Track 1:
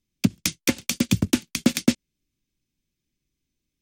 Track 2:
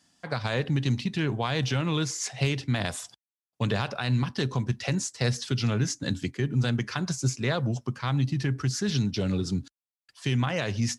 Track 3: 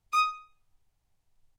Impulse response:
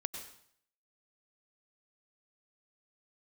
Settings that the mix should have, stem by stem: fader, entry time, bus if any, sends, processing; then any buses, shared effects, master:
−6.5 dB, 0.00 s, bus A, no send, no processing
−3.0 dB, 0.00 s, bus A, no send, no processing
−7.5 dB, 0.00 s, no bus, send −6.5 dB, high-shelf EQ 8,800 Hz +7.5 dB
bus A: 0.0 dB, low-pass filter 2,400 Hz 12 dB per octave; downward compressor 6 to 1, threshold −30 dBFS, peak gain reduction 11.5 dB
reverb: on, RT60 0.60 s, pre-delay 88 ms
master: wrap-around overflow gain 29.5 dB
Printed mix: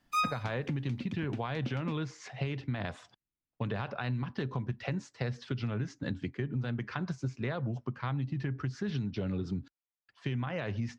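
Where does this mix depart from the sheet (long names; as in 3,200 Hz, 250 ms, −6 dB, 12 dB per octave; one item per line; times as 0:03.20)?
stem 1 −6.5 dB → −16.5 dB
master: missing wrap-around overflow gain 29.5 dB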